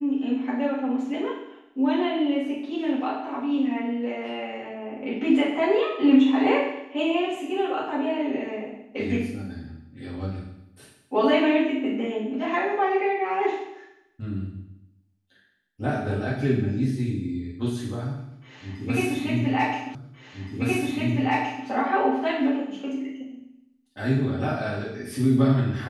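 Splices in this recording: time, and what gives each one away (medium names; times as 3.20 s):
19.95 s: repeat of the last 1.72 s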